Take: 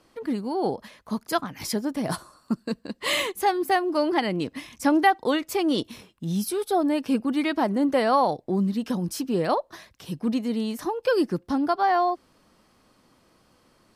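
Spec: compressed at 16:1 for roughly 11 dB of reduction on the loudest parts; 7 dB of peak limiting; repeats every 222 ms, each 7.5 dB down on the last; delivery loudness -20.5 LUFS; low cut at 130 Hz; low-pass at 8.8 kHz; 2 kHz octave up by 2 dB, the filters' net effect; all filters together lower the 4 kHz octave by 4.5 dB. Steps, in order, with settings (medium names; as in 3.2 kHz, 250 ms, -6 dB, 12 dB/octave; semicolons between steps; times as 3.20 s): high-pass 130 Hz; low-pass 8.8 kHz; peaking EQ 2 kHz +4 dB; peaking EQ 4 kHz -8 dB; compression 16:1, threshold -23 dBFS; peak limiter -22 dBFS; feedback delay 222 ms, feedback 42%, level -7.5 dB; trim +10 dB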